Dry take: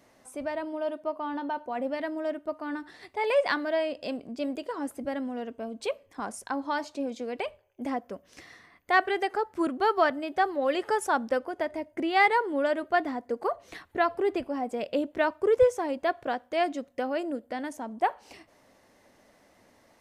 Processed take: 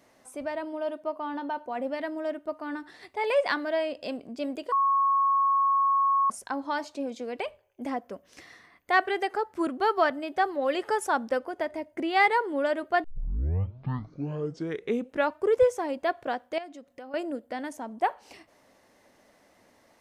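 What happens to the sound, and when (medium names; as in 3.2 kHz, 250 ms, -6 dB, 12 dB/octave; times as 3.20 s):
4.72–6.30 s: bleep 1.1 kHz -20 dBFS
13.04 s: tape start 2.34 s
16.58–17.14 s: compression 2:1, threshold -49 dBFS
whole clip: bass shelf 160 Hz -4 dB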